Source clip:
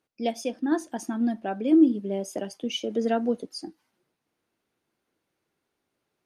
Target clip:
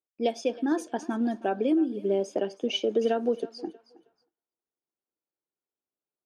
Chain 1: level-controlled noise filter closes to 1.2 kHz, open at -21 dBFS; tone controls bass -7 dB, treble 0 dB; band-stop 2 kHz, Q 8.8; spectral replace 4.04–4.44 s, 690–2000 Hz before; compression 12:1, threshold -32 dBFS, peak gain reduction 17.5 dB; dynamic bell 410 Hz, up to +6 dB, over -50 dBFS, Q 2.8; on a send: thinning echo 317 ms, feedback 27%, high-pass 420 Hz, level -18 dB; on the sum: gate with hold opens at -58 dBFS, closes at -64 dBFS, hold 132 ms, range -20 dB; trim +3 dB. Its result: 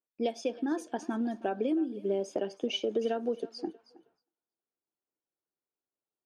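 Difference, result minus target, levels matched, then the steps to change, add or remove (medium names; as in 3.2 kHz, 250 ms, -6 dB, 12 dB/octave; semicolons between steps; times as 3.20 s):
compression: peak gain reduction +5.5 dB
change: compression 12:1, threshold -26 dBFS, peak gain reduction 12 dB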